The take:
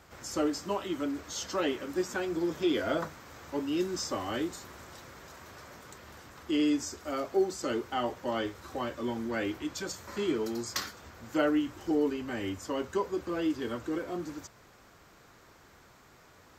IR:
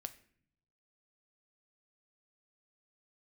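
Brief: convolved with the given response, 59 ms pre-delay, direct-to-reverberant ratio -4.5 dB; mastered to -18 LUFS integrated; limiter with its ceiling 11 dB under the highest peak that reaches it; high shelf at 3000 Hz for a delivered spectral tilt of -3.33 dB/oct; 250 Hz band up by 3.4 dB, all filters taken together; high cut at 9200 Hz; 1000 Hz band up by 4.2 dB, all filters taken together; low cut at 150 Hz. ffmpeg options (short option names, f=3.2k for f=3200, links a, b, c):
-filter_complex "[0:a]highpass=150,lowpass=9.2k,equalizer=f=250:t=o:g=4.5,equalizer=f=1k:t=o:g=4.5,highshelf=f=3k:g=6,alimiter=limit=-24dB:level=0:latency=1,asplit=2[a][b];[1:a]atrim=start_sample=2205,adelay=59[c];[b][c]afir=irnorm=-1:irlink=0,volume=8dB[d];[a][d]amix=inputs=2:normalize=0,volume=10dB"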